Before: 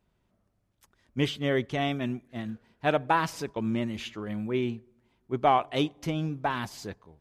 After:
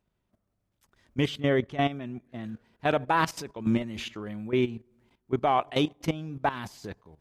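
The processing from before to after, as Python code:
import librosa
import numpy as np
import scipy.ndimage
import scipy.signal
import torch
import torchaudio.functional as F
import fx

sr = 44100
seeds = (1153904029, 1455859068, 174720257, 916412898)

y = fx.high_shelf(x, sr, hz=3000.0, db=-7.5, at=(1.4, 2.44))
y = fx.level_steps(y, sr, step_db=14)
y = F.gain(torch.from_numpy(y), 5.5).numpy()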